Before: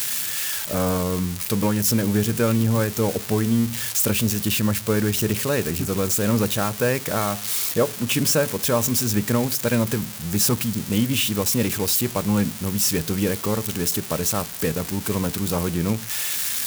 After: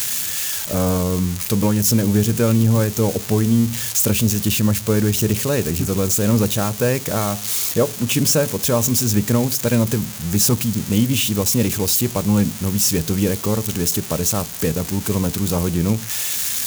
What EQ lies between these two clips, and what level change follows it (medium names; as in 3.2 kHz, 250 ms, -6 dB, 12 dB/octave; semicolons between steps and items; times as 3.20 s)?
dynamic bell 1.6 kHz, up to -4 dB, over -36 dBFS, Q 0.97; bass shelf 140 Hz +5 dB; peaking EQ 6.6 kHz +4 dB 0.29 oct; +2.5 dB